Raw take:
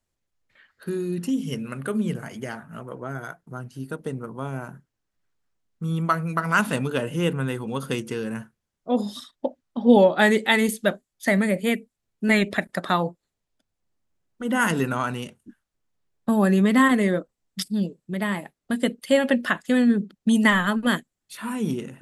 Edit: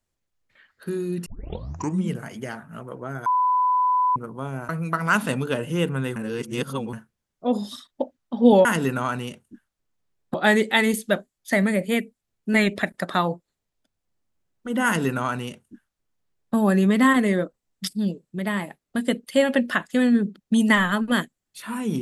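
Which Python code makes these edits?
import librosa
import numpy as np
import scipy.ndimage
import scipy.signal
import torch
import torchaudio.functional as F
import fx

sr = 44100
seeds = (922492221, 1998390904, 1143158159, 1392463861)

y = fx.edit(x, sr, fx.tape_start(start_s=1.26, length_s=0.84),
    fx.bleep(start_s=3.26, length_s=0.9, hz=1000.0, db=-17.0),
    fx.cut(start_s=4.69, length_s=1.44),
    fx.reverse_span(start_s=7.6, length_s=0.77),
    fx.duplicate(start_s=14.6, length_s=1.69, to_s=10.09), tone=tone)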